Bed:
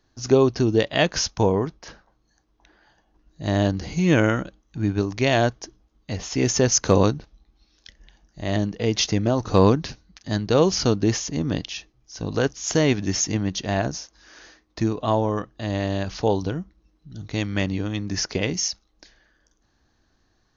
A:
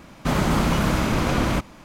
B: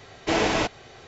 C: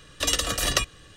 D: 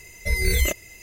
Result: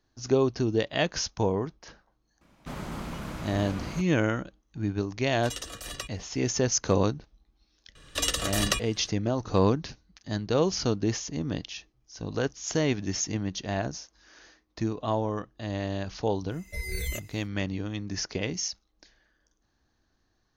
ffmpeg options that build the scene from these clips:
-filter_complex "[3:a]asplit=2[a][b];[0:a]volume=-6.5dB[c];[1:a]atrim=end=1.84,asetpts=PTS-STARTPTS,volume=-16dB,afade=t=in:d=0.004:c=hsin,afade=t=out:st=1.836:d=0.004:c=hsin,adelay=2410[d];[a]atrim=end=1.16,asetpts=PTS-STARTPTS,volume=-14dB,afade=t=in:d=0.004:c=hsin,afade=t=out:st=1.156:d=0.004:c=hsin,adelay=5230[e];[b]atrim=end=1.16,asetpts=PTS-STARTPTS,volume=-3.5dB,afade=t=in:d=0.004:c=hsin,afade=t=out:st=1.156:d=0.004:c=hsin,adelay=7950[f];[4:a]atrim=end=1.02,asetpts=PTS-STARTPTS,volume=-11.5dB,afade=t=in:d=0.1,afade=t=out:st=0.92:d=0.1,adelay=16470[g];[c][d][e][f][g]amix=inputs=5:normalize=0"

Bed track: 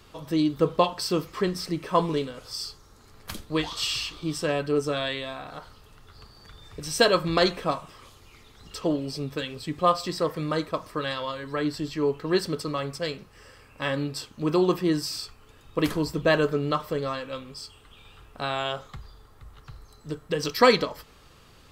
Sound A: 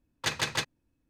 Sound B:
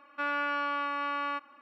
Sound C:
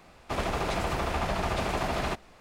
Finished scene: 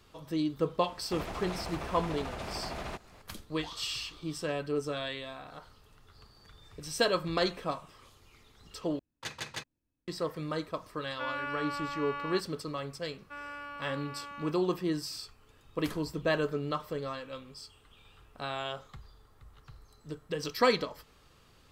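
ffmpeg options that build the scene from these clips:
-filter_complex "[2:a]asplit=2[a][b];[0:a]volume=-7.5dB[c];[3:a]acompressor=threshold=-38dB:ratio=2:attack=0.38:release=378:knee=1:detection=peak[d];[c]asplit=2[e][f];[e]atrim=end=8.994[g];[1:a]atrim=end=1.09,asetpts=PTS-STARTPTS,volume=-10dB[h];[f]atrim=start=10.076[i];[d]atrim=end=2.4,asetpts=PTS-STARTPTS,volume=-1dB,afade=t=in:d=0.004:c=hsin,afade=t=out:st=2.396:d=0.004:c=hsin,adelay=820[j];[a]atrim=end=1.61,asetpts=PTS-STARTPTS,volume=-5.5dB,afade=t=in:d=0.004:c=hsin,afade=t=out:st=1.606:d=0.004:c=hsin,adelay=11010[k];[b]atrim=end=1.61,asetpts=PTS-STARTPTS,volume=-12dB,afade=t=in:d=0.004:c=hsin,afade=t=out:st=1.606:d=0.004:c=hsin,adelay=13120[l];[g][h]acrossfade=d=0.004:c1=hsin:c2=hsin[m];[m][i]acrossfade=d=0.004:c1=hsin:c2=hsin[n];[n][j][k][l]amix=inputs=4:normalize=0"

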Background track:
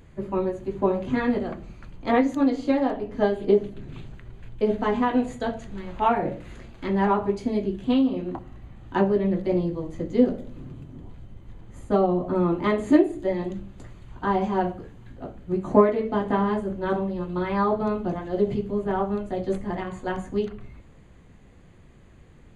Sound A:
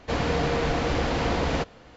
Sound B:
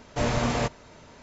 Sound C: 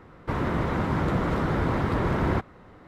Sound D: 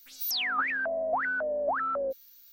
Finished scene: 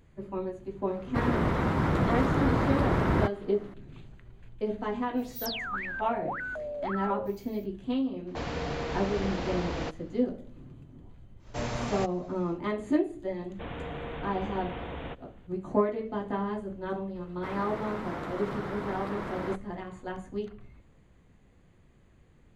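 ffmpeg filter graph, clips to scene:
-filter_complex "[3:a]asplit=2[a][b];[1:a]asplit=2[c][d];[0:a]volume=-8.5dB[e];[d]aresample=8000,aresample=44100[f];[b]highpass=f=300:p=1[g];[a]atrim=end=2.87,asetpts=PTS-STARTPTS,volume=-1dB,afade=t=in:d=0.004:c=hsin,afade=t=out:st=2.866:d=0.004:c=hsin,adelay=870[h];[4:a]atrim=end=2.52,asetpts=PTS-STARTPTS,volume=-6dB,afade=t=in:d=0.05,afade=t=out:st=2.47:d=0.05,adelay=5150[i];[c]atrim=end=1.96,asetpts=PTS-STARTPTS,volume=-8.5dB,afade=t=in:d=0.004:c=hsin,afade=t=out:st=1.956:d=0.004:c=hsin,adelay=8270[j];[2:a]atrim=end=1.22,asetpts=PTS-STARTPTS,volume=-7.5dB,afade=t=in:d=0.1,afade=t=out:st=1.12:d=0.1,adelay=501858S[k];[f]atrim=end=1.96,asetpts=PTS-STARTPTS,volume=-13dB,afade=t=in:d=0.004:c=hsin,afade=t=out:st=1.956:d=0.004:c=hsin,adelay=13510[l];[g]atrim=end=2.87,asetpts=PTS-STARTPTS,volume=-8dB,afade=t=in:d=0.004:c=hsin,afade=t=out:st=2.866:d=0.004:c=hsin,adelay=17150[m];[e][h][i][j][k][l][m]amix=inputs=7:normalize=0"

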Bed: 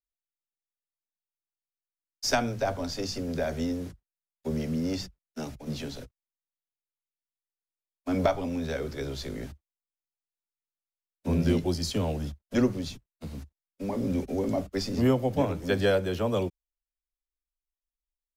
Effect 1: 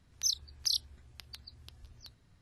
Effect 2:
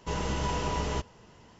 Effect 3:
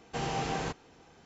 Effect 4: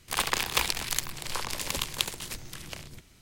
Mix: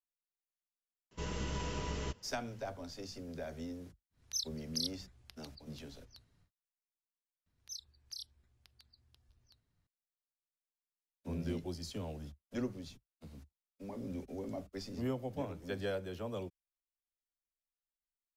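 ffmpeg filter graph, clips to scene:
-filter_complex "[1:a]asplit=2[a][b];[0:a]volume=-13.5dB[c];[2:a]equalizer=f=820:w=1.9:g=-8[d];[c]asplit=2[e][f];[e]atrim=end=7.464[g];[b]atrim=end=2.41,asetpts=PTS-STARTPTS,volume=-15.5dB[h];[f]atrim=start=9.866[i];[d]atrim=end=1.59,asetpts=PTS-STARTPTS,volume=-7dB,afade=t=in:d=0.004:c=hsin,afade=t=out:st=1.586:d=0.004:c=hsin,adelay=1110[j];[a]atrim=end=2.41,asetpts=PTS-STARTPTS,volume=-6.5dB,afade=t=in:d=0.1,afade=t=out:st=2.31:d=0.1,adelay=4100[k];[g][h]acrossfade=d=0.004:c1=hsin:c2=hsin[l];[l][i]acrossfade=d=0.004:c1=hsin:c2=hsin[m];[m][j][k]amix=inputs=3:normalize=0"

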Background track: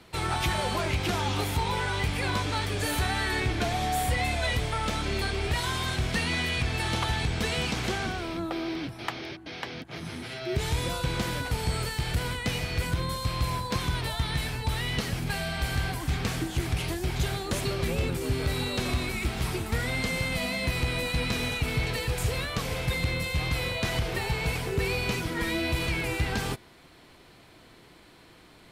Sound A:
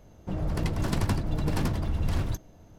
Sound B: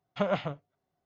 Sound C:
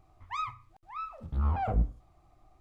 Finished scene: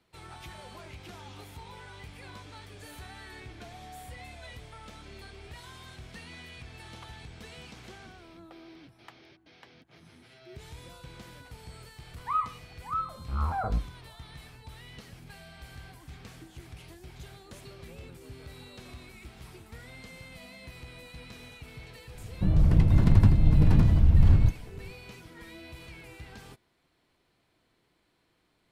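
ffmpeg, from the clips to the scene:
-filter_complex "[0:a]volume=-18dB[a];[3:a]lowpass=f=1.4k:t=q:w=3.2[b];[1:a]bass=f=250:g=13,treble=f=4k:g=-9[c];[b]atrim=end=2.6,asetpts=PTS-STARTPTS,volume=-2.5dB,afade=t=in:d=0.004:c=hsin,afade=t=out:st=2.596:d=0.004:c=hsin,adelay=11960[d];[c]atrim=end=2.78,asetpts=PTS-STARTPTS,volume=-3.5dB,afade=t=in:d=0.004:c=hsin,afade=t=out:st=2.776:d=0.004:c=hsin,adelay=22140[e];[a][d][e]amix=inputs=3:normalize=0"

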